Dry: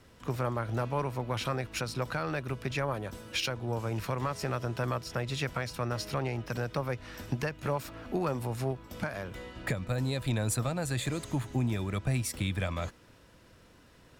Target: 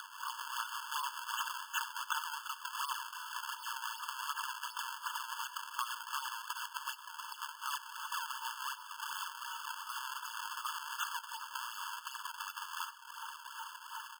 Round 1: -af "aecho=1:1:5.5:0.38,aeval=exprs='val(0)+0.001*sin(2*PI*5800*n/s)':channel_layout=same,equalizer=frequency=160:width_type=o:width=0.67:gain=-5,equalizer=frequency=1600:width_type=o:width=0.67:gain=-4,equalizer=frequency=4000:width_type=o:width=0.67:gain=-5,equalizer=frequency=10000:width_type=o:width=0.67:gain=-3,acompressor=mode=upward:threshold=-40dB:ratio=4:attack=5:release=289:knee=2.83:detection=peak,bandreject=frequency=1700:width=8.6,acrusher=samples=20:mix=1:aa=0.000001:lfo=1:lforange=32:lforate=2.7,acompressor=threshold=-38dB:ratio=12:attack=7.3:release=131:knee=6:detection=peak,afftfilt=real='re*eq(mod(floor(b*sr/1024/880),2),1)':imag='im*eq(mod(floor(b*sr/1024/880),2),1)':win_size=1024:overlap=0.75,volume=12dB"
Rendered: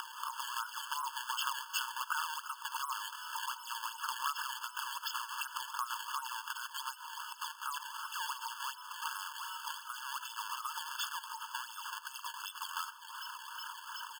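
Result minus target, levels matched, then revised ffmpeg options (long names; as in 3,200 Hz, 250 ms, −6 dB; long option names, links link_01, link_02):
sample-and-hold swept by an LFO: distortion −6 dB
-af "aecho=1:1:5.5:0.38,aeval=exprs='val(0)+0.001*sin(2*PI*5800*n/s)':channel_layout=same,equalizer=frequency=160:width_type=o:width=0.67:gain=-5,equalizer=frequency=1600:width_type=o:width=0.67:gain=-4,equalizer=frequency=4000:width_type=o:width=0.67:gain=-5,equalizer=frequency=10000:width_type=o:width=0.67:gain=-3,acompressor=mode=upward:threshold=-40dB:ratio=4:attack=5:release=289:knee=2.83:detection=peak,bandreject=frequency=1700:width=8.6,acrusher=samples=43:mix=1:aa=0.000001:lfo=1:lforange=68.8:lforate=2.7,acompressor=threshold=-38dB:ratio=12:attack=7.3:release=131:knee=6:detection=peak,afftfilt=real='re*eq(mod(floor(b*sr/1024/880),2),1)':imag='im*eq(mod(floor(b*sr/1024/880),2),1)':win_size=1024:overlap=0.75,volume=12dB"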